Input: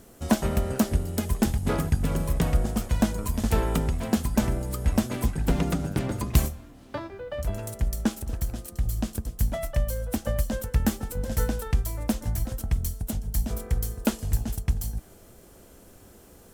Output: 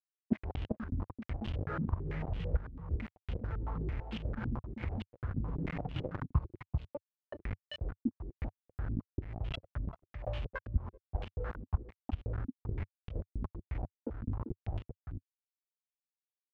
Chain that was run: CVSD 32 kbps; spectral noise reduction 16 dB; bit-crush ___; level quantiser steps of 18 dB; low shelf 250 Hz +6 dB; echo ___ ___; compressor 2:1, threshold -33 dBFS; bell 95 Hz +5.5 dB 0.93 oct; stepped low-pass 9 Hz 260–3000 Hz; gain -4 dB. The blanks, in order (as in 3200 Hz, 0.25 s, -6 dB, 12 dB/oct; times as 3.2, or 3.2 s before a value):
5-bit, 0.391 s, -8 dB